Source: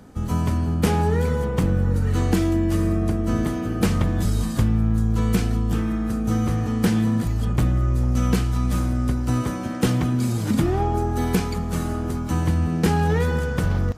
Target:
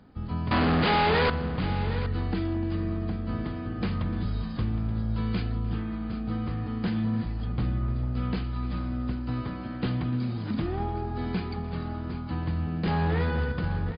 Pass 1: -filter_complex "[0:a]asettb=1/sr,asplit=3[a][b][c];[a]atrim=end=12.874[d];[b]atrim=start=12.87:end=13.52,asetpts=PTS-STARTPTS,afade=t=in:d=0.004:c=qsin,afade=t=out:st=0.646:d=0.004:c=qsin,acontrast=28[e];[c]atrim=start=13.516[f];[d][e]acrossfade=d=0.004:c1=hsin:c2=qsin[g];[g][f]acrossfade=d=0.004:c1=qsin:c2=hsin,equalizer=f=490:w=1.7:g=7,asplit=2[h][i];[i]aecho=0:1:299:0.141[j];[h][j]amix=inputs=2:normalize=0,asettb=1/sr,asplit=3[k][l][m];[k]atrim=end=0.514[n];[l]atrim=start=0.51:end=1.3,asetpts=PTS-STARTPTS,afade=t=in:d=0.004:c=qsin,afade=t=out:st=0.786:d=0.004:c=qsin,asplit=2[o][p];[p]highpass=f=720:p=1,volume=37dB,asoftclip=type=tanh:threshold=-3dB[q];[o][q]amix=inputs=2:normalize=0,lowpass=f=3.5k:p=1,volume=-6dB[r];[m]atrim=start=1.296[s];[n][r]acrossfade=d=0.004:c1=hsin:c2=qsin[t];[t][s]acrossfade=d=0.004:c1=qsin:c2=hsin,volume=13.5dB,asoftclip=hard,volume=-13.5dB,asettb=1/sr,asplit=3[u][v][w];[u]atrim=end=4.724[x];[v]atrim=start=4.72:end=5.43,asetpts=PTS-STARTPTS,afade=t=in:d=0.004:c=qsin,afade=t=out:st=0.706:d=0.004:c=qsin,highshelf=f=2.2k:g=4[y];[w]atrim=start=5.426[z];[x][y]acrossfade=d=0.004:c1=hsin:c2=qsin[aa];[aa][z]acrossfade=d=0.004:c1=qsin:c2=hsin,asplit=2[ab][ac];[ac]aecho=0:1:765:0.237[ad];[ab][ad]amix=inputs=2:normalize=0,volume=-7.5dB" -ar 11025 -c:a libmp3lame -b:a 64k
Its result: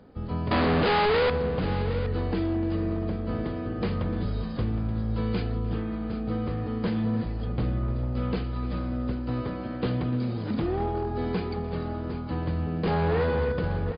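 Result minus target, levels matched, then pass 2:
500 Hz band +4.5 dB
-filter_complex "[0:a]asettb=1/sr,asplit=3[a][b][c];[a]atrim=end=12.874[d];[b]atrim=start=12.87:end=13.52,asetpts=PTS-STARTPTS,afade=t=in:d=0.004:c=qsin,afade=t=out:st=0.646:d=0.004:c=qsin,acontrast=28[e];[c]atrim=start=13.516[f];[d][e]acrossfade=d=0.004:c1=hsin:c2=qsin[g];[g][f]acrossfade=d=0.004:c1=qsin:c2=hsin,equalizer=f=490:w=1.7:g=-3,asplit=2[h][i];[i]aecho=0:1:299:0.141[j];[h][j]amix=inputs=2:normalize=0,asettb=1/sr,asplit=3[k][l][m];[k]atrim=end=0.514[n];[l]atrim=start=0.51:end=1.3,asetpts=PTS-STARTPTS,afade=t=in:d=0.004:c=qsin,afade=t=out:st=0.786:d=0.004:c=qsin,asplit=2[o][p];[p]highpass=f=720:p=1,volume=37dB,asoftclip=type=tanh:threshold=-3dB[q];[o][q]amix=inputs=2:normalize=0,lowpass=f=3.5k:p=1,volume=-6dB[r];[m]atrim=start=1.296[s];[n][r]acrossfade=d=0.004:c1=hsin:c2=qsin[t];[t][s]acrossfade=d=0.004:c1=qsin:c2=hsin,volume=13.5dB,asoftclip=hard,volume=-13.5dB,asettb=1/sr,asplit=3[u][v][w];[u]atrim=end=4.724[x];[v]atrim=start=4.72:end=5.43,asetpts=PTS-STARTPTS,afade=t=in:d=0.004:c=qsin,afade=t=out:st=0.706:d=0.004:c=qsin,highshelf=f=2.2k:g=4[y];[w]atrim=start=5.426[z];[x][y]acrossfade=d=0.004:c1=hsin:c2=qsin[aa];[aa][z]acrossfade=d=0.004:c1=qsin:c2=hsin,asplit=2[ab][ac];[ac]aecho=0:1:765:0.237[ad];[ab][ad]amix=inputs=2:normalize=0,volume=-7.5dB" -ar 11025 -c:a libmp3lame -b:a 64k

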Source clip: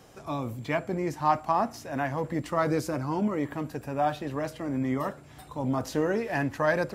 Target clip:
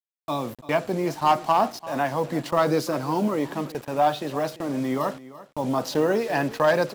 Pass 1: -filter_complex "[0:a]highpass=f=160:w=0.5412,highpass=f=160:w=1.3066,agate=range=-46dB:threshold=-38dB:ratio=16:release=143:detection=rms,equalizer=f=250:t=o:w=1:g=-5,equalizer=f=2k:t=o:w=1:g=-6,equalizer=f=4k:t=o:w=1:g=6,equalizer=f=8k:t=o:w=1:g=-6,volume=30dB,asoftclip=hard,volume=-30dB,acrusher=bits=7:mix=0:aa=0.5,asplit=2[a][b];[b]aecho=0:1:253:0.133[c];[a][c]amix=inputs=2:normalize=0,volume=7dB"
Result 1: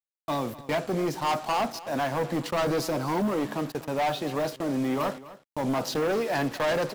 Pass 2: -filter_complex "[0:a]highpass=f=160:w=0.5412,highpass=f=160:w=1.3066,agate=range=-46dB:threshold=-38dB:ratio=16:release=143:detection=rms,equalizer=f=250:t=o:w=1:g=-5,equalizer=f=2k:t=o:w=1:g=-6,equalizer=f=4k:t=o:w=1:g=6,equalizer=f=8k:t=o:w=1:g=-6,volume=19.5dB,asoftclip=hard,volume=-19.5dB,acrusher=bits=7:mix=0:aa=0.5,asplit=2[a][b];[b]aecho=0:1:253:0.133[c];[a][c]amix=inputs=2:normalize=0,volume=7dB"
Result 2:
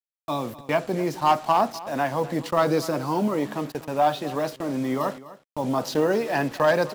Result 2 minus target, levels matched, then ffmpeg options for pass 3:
echo 89 ms early
-filter_complex "[0:a]highpass=f=160:w=0.5412,highpass=f=160:w=1.3066,agate=range=-46dB:threshold=-38dB:ratio=16:release=143:detection=rms,equalizer=f=250:t=o:w=1:g=-5,equalizer=f=2k:t=o:w=1:g=-6,equalizer=f=4k:t=o:w=1:g=6,equalizer=f=8k:t=o:w=1:g=-6,volume=19.5dB,asoftclip=hard,volume=-19.5dB,acrusher=bits=7:mix=0:aa=0.5,asplit=2[a][b];[b]aecho=0:1:342:0.133[c];[a][c]amix=inputs=2:normalize=0,volume=7dB"

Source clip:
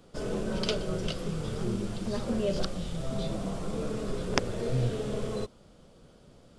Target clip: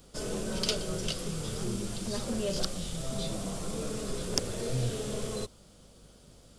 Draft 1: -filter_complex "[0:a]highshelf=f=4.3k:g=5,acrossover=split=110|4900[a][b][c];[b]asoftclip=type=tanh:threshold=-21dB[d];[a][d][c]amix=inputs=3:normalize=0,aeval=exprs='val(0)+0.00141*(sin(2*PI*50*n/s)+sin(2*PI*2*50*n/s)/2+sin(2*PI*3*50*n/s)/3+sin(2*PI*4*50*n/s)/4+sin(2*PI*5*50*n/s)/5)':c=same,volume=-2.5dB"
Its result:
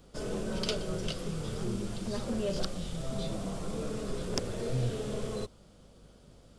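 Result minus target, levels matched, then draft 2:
8000 Hz band -6.0 dB
-filter_complex "[0:a]highshelf=f=4.3k:g=15.5,acrossover=split=110|4900[a][b][c];[b]asoftclip=type=tanh:threshold=-21dB[d];[a][d][c]amix=inputs=3:normalize=0,aeval=exprs='val(0)+0.00141*(sin(2*PI*50*n/s)+sin(2*PI*2*50*n/s)/2+sin(2*PI*3*50*n/s)/3+sin(2*PI*4*50*n/s)/4+sin(2*PI*5*50*n/s)/5)':c=same,volume=-2.5dB"

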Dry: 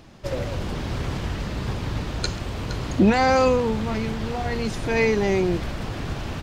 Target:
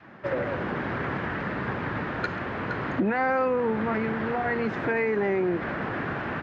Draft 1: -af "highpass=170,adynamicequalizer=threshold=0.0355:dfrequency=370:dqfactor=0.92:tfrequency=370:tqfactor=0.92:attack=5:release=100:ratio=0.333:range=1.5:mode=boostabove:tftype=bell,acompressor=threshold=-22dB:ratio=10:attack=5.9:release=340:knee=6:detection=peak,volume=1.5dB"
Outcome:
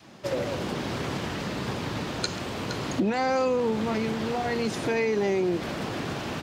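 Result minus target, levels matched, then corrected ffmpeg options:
2000 Hz band -4.5 dB
-af "highpass=170,adynamicequalizer=threshold=0.0355:dfrequency=370:dqfactor=0.92:tfrequency=370:tqfactor=0.92:attack=5:release=100:ratio=0.333:range=1.5:mode=boostabove:tftype=bell,lowpass=f=1.7k:t=q:w=2.5,acompressor=threshold=-22dB:ratio=10:attack=5.9:release=340:knee=6:detection=peak,volume=1.5dB"

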